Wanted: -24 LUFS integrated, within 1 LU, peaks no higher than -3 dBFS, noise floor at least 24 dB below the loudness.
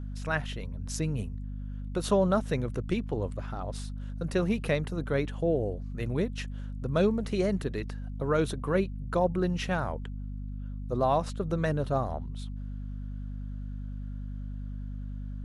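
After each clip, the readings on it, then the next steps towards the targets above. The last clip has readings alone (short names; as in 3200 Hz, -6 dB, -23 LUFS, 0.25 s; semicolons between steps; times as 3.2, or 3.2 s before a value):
hum 50 Hz; harmonics up to 250 Hz; hum level -34 dBFS; loudness -31.5 LUFS; peak -13.5 dBFS; loudness target -24.0 LUFS
-> notches 50/100/150/200/250 Hz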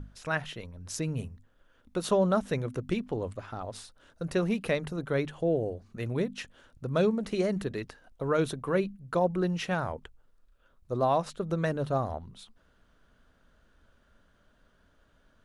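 hum none; loudness -31.0 LUFS; peak -14.0 dBFS; loudness target -24.0 LUFS
-> gain +7 dB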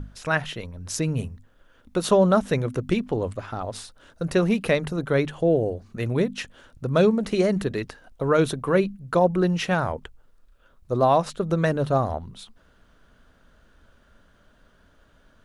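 loudness -24.0 LUFS; peak -7.0 dBFS; noise floor -59 dBFS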